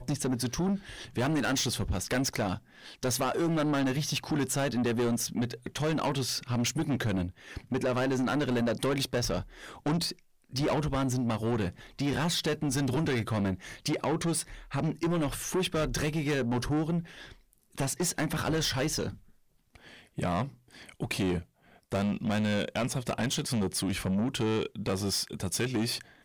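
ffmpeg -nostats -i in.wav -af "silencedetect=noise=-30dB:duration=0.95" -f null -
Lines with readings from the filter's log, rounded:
silence_start: 19.10
silence_end: 20.18 | silence_duration: 1.09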